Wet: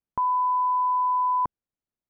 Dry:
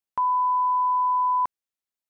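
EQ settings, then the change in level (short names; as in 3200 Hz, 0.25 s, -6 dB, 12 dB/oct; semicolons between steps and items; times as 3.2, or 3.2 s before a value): LPF 1100 Hz 6 dB/oct; low shelf 380 Hz +12 dB; 0.0 dB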